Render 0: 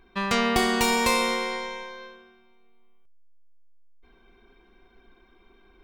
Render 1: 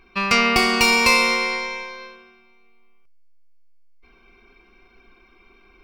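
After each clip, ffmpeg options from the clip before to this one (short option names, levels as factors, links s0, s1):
-af "superequalizer=10b=1.78:12b=3.16:14b=2.51,volume=1.26"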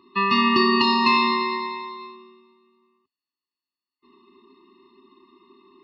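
-filter_complex "[0:a]asplit=2[s0][s1];[s1]highpass=f=720:p=1,volume=3.55,asoftclip=type=tanh:threshold=0.891[s2];[s0][s2]amix=inputs=2:normalize=0,lowpass=f=2100:p=1,volume=0.501,highpass=f=100:w=0.5412,highpass=f=100:w=1.3066,equalizer=f=120:t=q:w=4:g=-7,equalizer=f=260:t=q:w=4:g=10,equalizer=f=410:t=q:w=4:g=6,equalizer=f=700:t=q:w=4:g=-3,equalizer=f=2400:t=q:w=4:g=-6,equalizer=f=4200:t=q:w=4:g=8,lowpass=f=4200:w=0.5412,lowpass=f=4200:w=1.3066,afftfilt=real='re*eq(mod(floor(b*sr/1024/420),2),0)':imag='im*eq(mod(floor(b*sr/1024/420),2),0)':win_size=1024:overlap=0.75"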